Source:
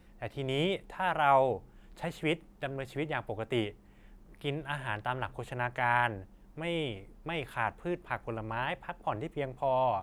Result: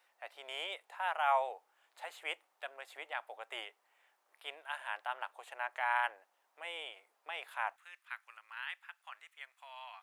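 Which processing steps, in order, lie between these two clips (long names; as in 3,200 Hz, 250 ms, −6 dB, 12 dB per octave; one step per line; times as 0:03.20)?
high-pass filter 690 Hz 24 dB per octave, from 0:07.76 1,400 Hz
level −4 dB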